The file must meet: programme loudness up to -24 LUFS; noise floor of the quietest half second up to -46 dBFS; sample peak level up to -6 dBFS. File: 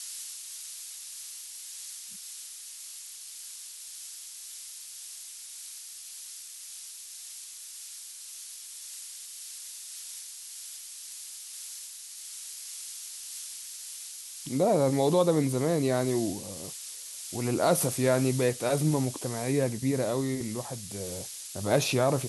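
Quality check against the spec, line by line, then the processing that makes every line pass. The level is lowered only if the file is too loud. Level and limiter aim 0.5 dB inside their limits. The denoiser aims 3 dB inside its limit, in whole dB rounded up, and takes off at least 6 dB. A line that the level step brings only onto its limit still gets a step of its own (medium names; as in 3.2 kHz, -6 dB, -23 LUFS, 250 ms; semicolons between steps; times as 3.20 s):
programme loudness -32.0 LUFS: pass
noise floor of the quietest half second -44 dBFS: fail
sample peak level -11.5 dBFS: pass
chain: noise reduction 6 dB, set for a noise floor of -44 dBFS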